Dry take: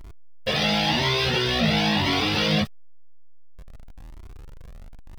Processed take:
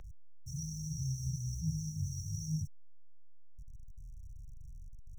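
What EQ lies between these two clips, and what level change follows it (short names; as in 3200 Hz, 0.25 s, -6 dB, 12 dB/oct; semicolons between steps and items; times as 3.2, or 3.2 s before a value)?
brick-wall FIR band-stop 170–5500 Hz; three-band isolator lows -15 dB, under 400 Hz, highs -20 dB, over 4000 Hz; +8.5 dB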